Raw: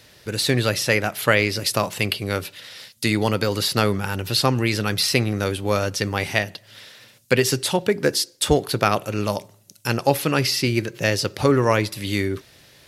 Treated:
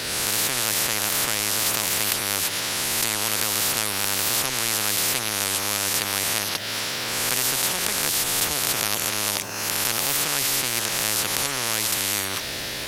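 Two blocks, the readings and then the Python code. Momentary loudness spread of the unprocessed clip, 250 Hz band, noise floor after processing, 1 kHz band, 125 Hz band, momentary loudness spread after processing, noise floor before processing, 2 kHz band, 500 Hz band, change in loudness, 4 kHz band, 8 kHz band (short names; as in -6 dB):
8 LU, -11.5 dB, -30 dBFS, -3.5 dB, -13.5 dB, 3 LU, -52 dBFS, -1.5 dB, -11.5 dB, 0.0 dB, +2.0 dB, +9.0 dB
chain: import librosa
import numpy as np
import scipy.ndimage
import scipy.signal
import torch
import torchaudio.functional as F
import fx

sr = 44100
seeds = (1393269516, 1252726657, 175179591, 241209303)

y = fx.spec_swells(x, sr, rise_s=0.7)
y = fx.quant_dither(y, sr, seeds[0], bits=12, dither='triangular')
y = fx.spectral_comp(y, sr, ratio=10.0)
y = y * librosa.db_to_amplitude(-1.0)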